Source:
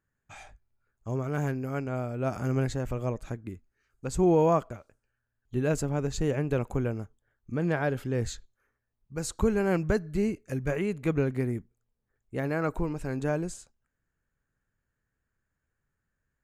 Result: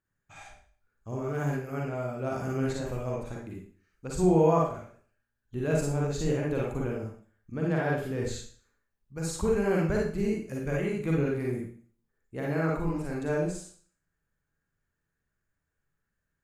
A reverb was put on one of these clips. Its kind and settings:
four-comb reverb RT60 0.47 s, DRR −3 dB
level −5 dB

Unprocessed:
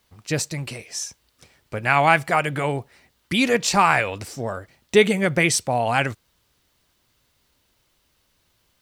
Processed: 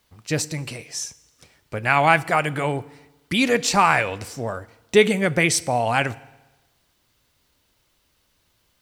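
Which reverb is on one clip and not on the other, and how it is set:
feedback delay network reverb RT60 1.1 s, low-frequency decay 1×, high-frequency decay 0.9×, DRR 17.5 dB

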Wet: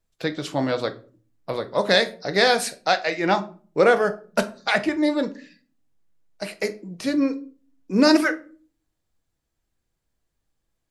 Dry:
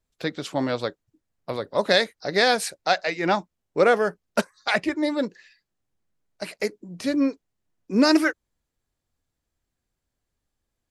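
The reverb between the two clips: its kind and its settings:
rectangular room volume 300 cubic metres, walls furnished, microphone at 0.65 metres
level +1 dB

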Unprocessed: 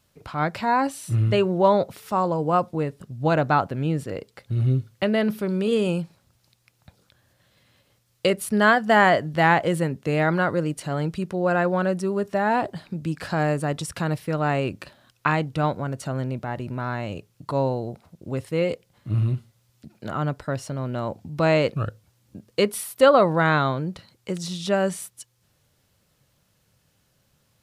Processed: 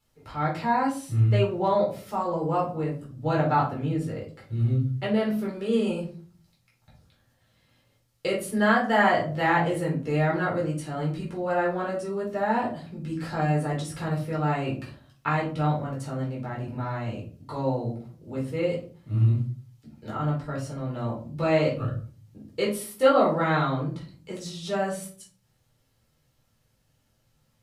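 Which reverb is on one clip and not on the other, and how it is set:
rectangular room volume 280 cubic metres, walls furnished, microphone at 4.2 metres
level −12 dB

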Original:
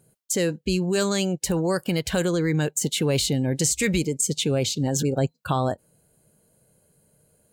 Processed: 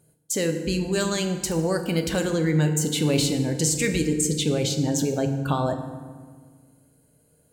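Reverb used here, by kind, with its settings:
feedback delay network reverb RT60 1.6 s, low-frequency decay 1.45×, high-frequency decay 0.6×, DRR 5 dB
level −1.5 dB

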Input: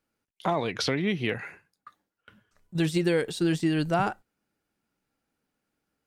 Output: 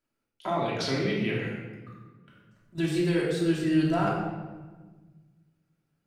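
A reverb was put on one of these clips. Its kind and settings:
rectangular room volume 1,000 cubic metres, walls mixed, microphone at 2.9 metres
level −7.5 dB

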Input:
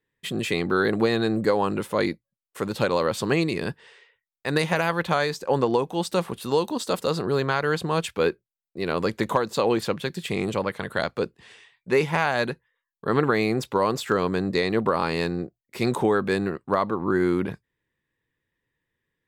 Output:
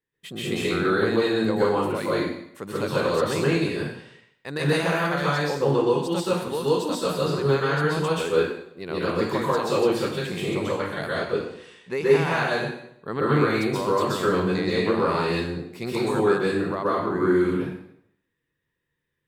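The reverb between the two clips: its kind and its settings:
dense smooth reverb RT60 0.7 s, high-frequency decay 0.95×, pre-delay 115 ms, DRR −7.5 dB
level −8 dB

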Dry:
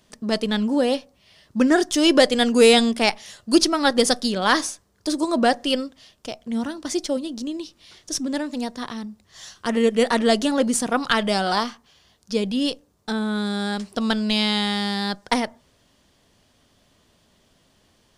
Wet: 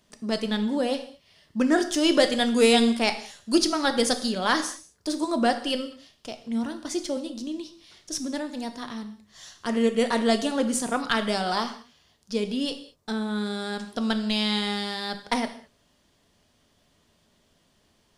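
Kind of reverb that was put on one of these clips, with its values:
reverb whose tail is shaped and stops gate 240 ms falling, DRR 7.5 dB
level −5 dB

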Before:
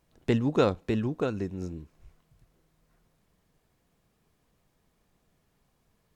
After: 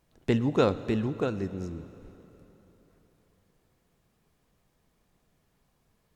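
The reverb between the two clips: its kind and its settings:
dense smooth reverb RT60 3.7 s, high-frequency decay 0.85×, DRR 14 dB

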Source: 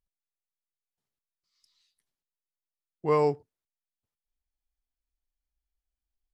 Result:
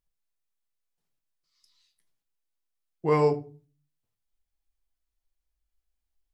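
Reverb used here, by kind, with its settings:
rectangular room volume 200 cubic metres, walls furnished, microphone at 0.69 metres
level +2 dB

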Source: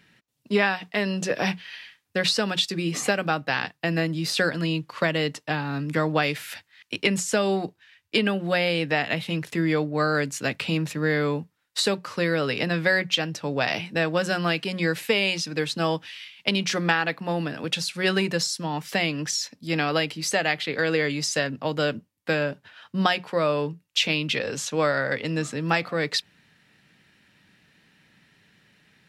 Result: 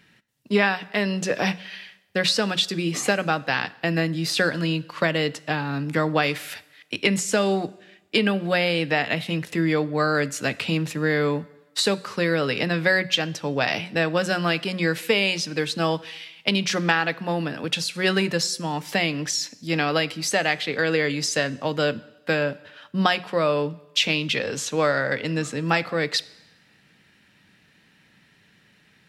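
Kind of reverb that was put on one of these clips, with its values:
coupled-rooms reverb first 0.97 s, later 3.1 s, from −28 dB, DRR 17.5 dB
level +1.5 dB

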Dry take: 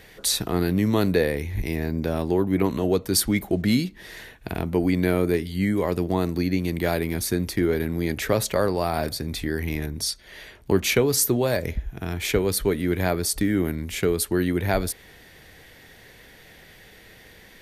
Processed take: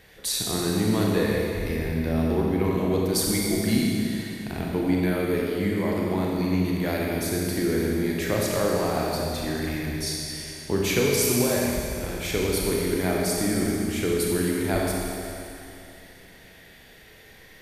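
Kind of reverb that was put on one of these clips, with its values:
four-comb reverb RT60 2.8 s, combs from 29 ms, DRR −3 dB
level −5.5 dB

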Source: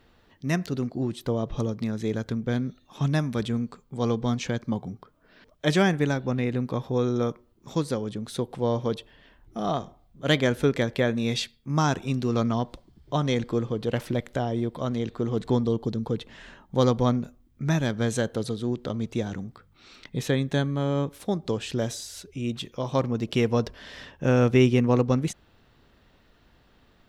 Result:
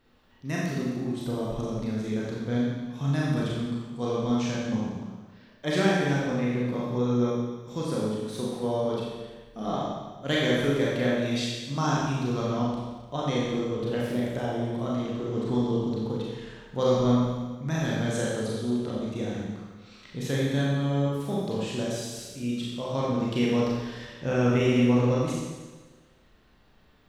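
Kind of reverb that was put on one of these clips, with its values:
four-comb reverb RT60 1.3 s, combs from 29 ms, DRR −5.5 dB
level −7.5 dB

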